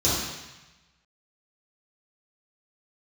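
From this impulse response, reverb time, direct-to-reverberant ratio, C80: 1.0 s, -10.5 dB, 2.0 dB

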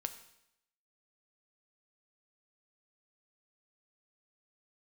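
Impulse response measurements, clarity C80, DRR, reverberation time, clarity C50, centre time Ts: 14.0 dB, 8.0 dB, 0.80 s, 12.0 dB, 9 ms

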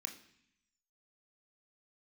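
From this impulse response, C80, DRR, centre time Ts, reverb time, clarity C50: 14.5 dB, 4.0 dB, 14 ms, 0.65 s, 11.0 dB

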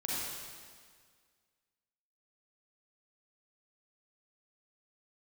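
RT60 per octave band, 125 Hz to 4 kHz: 1.8, 1.9, 1.8, 1.8, 1.8, 1.7 s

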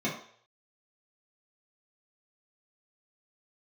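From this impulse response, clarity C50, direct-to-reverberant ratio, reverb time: 6.0 dB, -8.0 dB, 0.55 s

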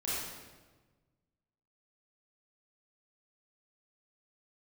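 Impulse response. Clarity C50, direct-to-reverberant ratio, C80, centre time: -3.5 dB, -9.5 dB, 0.0 dB, 0.103 s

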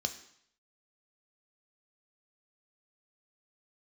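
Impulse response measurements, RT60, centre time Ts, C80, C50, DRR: 0.65 s, 10 ms, 15.0 dB, 12.5 dB, 6.5 dB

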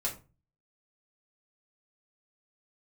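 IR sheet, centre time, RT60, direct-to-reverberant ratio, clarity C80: 17 ms, 0.30 s, -3.5 dB, 17.0 dB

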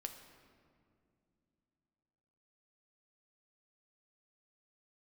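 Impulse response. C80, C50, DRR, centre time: 9.0 dB, 8.0 dB, 5.0 dB, 29 ms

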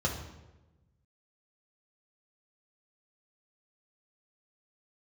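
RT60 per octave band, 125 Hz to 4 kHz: 1.7, 1.4, 1.2, 0.95, 0.85, 0.75 s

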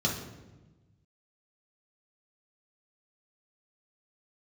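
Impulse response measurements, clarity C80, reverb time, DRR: 8.0 dB, 1.1 s, -3.5 dB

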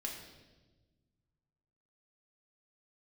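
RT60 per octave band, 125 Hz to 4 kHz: 2.5, 2.0, 1.5, 1.0, 1.0, 1.1 s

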